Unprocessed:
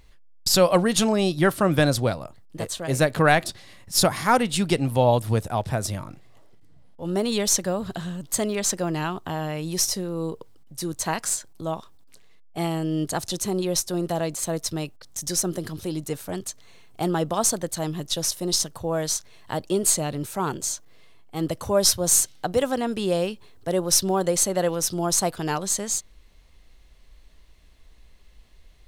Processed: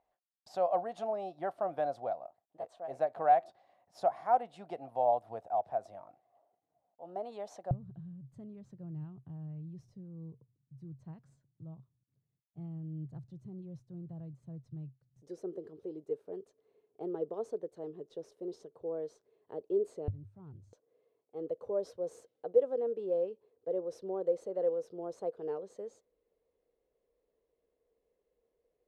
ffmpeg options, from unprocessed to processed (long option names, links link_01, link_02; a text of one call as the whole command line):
ffmpeg -i in.wav -af "asetnsamples=nb_out_samples=441:pad=0,asendcmd='7.71 bandpass f 130;15.22 bandpass f 430;20.08 bandpass f 100;20.73 bandpass f 470',bandpass=frequency=710:width_type=q:width=8.5:csg=0" out.wav